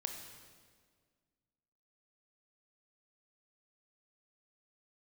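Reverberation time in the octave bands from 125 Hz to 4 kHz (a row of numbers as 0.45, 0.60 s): 2.1, 2.2, 1.9, 1.6, 1.5, 1.4 s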